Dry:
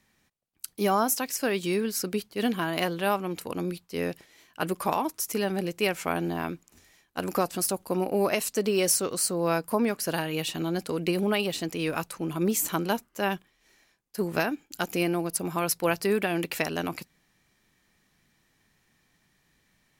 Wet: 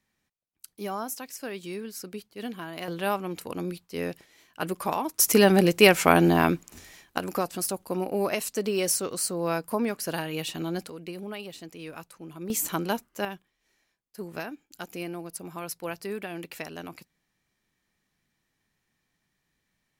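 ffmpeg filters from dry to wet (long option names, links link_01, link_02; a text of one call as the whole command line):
ffmpeg -i in.wav -af "asetnsamples=nb_out_samples=441:pad=0,asendcmd='2.88 volume volume -1.5dB;5.19 volume volume 10dB;7.18 volume volume -2dB;10.89 volume volume -11.5dB;12.5 volume volume -1dB;13.25 volume volume -9dB',volume=-9dB" out.wav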